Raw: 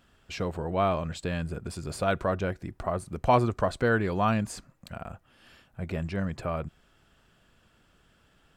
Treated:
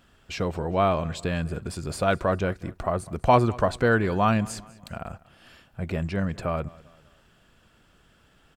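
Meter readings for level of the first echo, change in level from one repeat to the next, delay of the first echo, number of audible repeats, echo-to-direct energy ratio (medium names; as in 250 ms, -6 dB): -22.0 dB, -7.0 dB, 198 ms, 2, -21.0 dB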